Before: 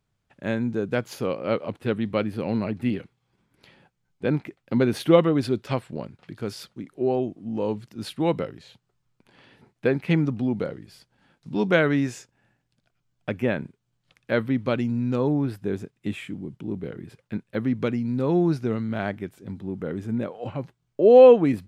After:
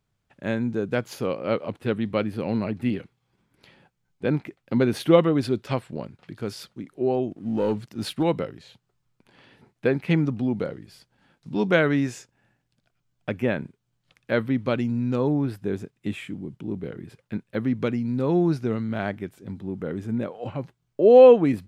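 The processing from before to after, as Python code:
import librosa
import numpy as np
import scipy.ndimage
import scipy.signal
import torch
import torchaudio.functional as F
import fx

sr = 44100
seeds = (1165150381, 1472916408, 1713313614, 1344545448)

y = fx.leveller(x, sr, passes=1, at=(7.31, 8.23))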